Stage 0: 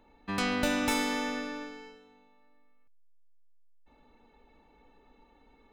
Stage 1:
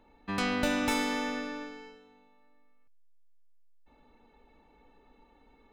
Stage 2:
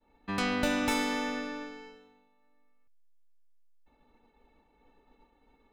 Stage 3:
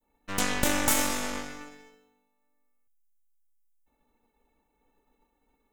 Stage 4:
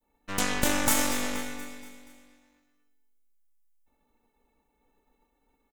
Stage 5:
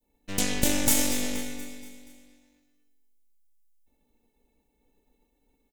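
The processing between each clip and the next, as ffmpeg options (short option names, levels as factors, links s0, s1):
-af "highshelf=f=5900:g=-4"
-af "agate=range=0.0224:threshold=0.00158:ratio=3:detection=peak"
-af "aeval=exprs='0.2*(cos(1*acos(clip(val(0)/0.2,-1,1)))-cos(1*PI/2))+0.1*(cos(4*acos(clip(val(0)/0.2,-1,1)))-cos(4*PI/2))+0.0501*(cos(6*acos(clip(val(0)/0.2,-1,1)))-cos(6*PI/2))+0.0158*(cos(7*acos(clip(val(0)/0.2,-1,1)))-cos(7*PI/2))+0.0398*(cos(8*acos(clip(val(0)/0.2,-1,1)))-cos(8*PI/2))':c=same,aexciter=amount=2.3:drive=9.2:freq=6200"
-af "aecho=1:1:238|476|714|952|1190:0.211|0.11|0.0571|0.0297|0.0155"
-af "equalizer=f=1200:t=o:w=1.2:g=-14.5,volume=1.41"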